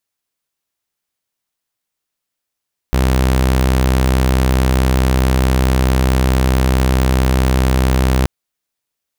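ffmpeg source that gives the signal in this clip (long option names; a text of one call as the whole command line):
ffmpeg -f lavfi -i "aevalsrc='0.376*(2*mod(64.6*t,1)-1)':duration=5.33:sample_rate=44100" out.wav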